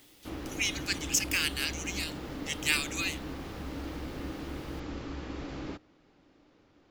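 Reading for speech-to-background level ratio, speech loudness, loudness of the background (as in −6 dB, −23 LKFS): 9.0 dB, −31.0 LKFS, −40.0 LKFS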